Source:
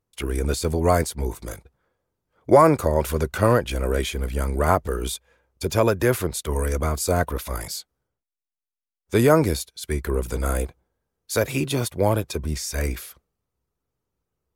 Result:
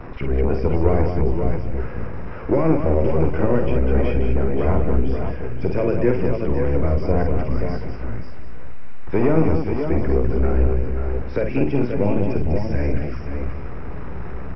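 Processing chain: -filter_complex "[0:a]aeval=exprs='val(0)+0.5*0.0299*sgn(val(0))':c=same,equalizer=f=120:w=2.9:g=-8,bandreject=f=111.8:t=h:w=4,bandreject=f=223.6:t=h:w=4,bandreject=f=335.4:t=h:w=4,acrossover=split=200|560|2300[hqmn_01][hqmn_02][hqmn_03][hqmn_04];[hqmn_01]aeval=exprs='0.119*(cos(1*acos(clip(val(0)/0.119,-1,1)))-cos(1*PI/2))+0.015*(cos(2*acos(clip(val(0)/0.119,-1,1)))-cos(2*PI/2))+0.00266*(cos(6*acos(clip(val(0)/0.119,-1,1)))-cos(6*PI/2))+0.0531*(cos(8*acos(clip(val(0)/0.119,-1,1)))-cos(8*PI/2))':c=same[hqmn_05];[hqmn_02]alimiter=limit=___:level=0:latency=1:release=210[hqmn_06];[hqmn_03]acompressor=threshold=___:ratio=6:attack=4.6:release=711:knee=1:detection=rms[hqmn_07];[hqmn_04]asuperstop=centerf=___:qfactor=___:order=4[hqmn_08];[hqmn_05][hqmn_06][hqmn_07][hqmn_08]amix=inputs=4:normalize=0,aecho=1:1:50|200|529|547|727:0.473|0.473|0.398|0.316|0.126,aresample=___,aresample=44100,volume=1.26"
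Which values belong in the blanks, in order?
0.178, 0.01, 4000, 0.96, 11025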